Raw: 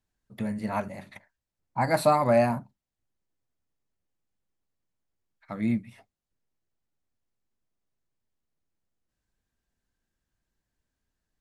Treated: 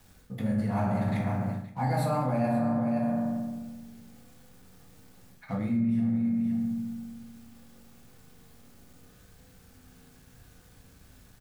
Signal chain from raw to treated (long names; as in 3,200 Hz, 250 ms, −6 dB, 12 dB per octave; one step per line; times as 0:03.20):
mu-law and A-law mismatch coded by mu
low-shelf EQ 280 Hz +8 dB
single-tap delay 523 ms −16.5 dB
convolution reverb RT60 1.2 s, pre-delay 3 ms, DRR −5.5 dB
in parallel at −0.5 dB: brickwall limiter −9.5 dBFS, peak gain reduction 9.5 dB
on the sum: bit reduction 10 bits
reversed playback
downward compressor 6 to 1, threshold −26 dBFS, peak gain reduction 20.5 dB
reversed playback